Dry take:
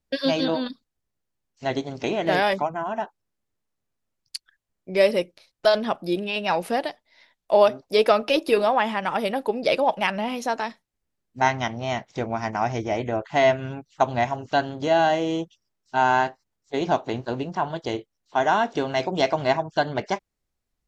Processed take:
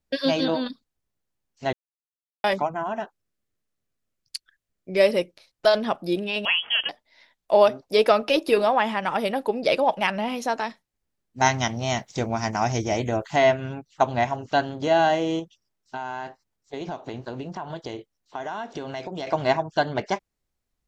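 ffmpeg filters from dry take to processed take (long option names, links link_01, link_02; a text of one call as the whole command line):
ffmpeg -i in.wav -filter_complex "[0:a]asettb=1/sr,asplit=3[link_01][link_02][link_03];[link_01]atrim=end=2.974[link_04];[link_02]atrim=start=2.97:end=5,asetpts=PTS-STARTPTS,afade=type=in:duration=0.004:curve=qsin,afade=type=out:start_time=2.026:duration=0.004:curve=qsin,equalizer=frequency=890:width_type=o:width=0.44:gain=-7.5[link_05];[link_03]atrim=start=4.996[link_06];[link_04][link_05]acrossfade=duration=0.004:curve1=hsin:curve2=qsin[link_07];[link_07][link_06]acrossfade=duration=0.004:curve1=qsin:curve2=hsin,asettb=1/sr,asplit=3[link_08][link_09][link_10];[link_08]atrim=end=6.454[link_11];[link_09]atrim=start=6.45:end=6.89,asetpts=PTS-STARTPTS,afade=type=in:duration=0.004:curve=qsin,afade=type=out:start_time=0.436:duration=0.004:curve=qsin,lowpass=frequency=3000:width_type=q:width=0.5098,lowpass=frequency=3000:width_type=q:width=0.6013,lowpass=frequency=3000:width_type=q:width=0.9,lowpass=frequency=3000:width_type=q:width=2.563,afreqshift=-3500[link_12];[link_10]atrim=start=6.886[link_13];[link_11][link_12]acrossfade=duration=0.004:curve1=hsin:curve2=qsin[link_14];[link_14][link_13]acrossfade=duration=0.004:curve1=qsin:curve2=hsin,asettb=1/sr,asplit=3[link_15][link_16][link_17];[link_15]atrim=end=11.404[link_18];[link_16]atrim=start=11.4:end=13.36,asetpts=PTS-STARTPTS,afade=type=in:duration=0.004:curve=qsin,afade=type=out:start_time=1.956:duration=0.004:curve=qsin,bass=frequency=250:gain=4,treble=frequency=4000:gain=13[link_19];[link_17]atrim=start=13.356[link_20];[link_18][link_19]acrossfade=duration=0.004:curve1=hsin:curve2=qsin[link_21];[link_21][link_20]acrossfade=duration=0.004:curve1=qsin:curve2=hsin,asettb=1/sr,asplit=3[link_22][link_23][link_24];[link_22]atrim=end=15.394[link_25];[link_23]atrim=start=15.39:end=19.27,asetpts=PTS-STARTPTS,afade=type=in:duration=0.004:curve=qsin,afade=type=out:start_time=3.876:duration=0.004:curve=qsin,acompressor=threshold=-29dB:ratio=6:attack=3.2:release=140:knee=1:detection=peak[link_26];[link_24]atrim=start=19.266[link_27];[link_25][link_26]acrossfade=duration=0.004:curve1=hsin:curve2=qsin[link_28];[link_28][link_27]acrossfade=duration=0.004:curve1=qsin:curve2=hsin,asplit=3[link_29][link_30][link_31];[link_29]atrim=end=1.73,asetpts=PTS-STARTPTS,afade=type=out:start_time=1.726:duration=0.004:curve=hsin[link_32];[link_30]atrim=start=1.73:end=2.44,asetpts=PTS-STARTPTS,volume=0[link_33];[link_31]atrim=start=2.44,asetpts=PTS-STARTPTS,afade=type=in:duration=0.004:curve=hsin[link_34];[link_32][link_33][link_34]concat=n=3:v=0:a=1" out.wav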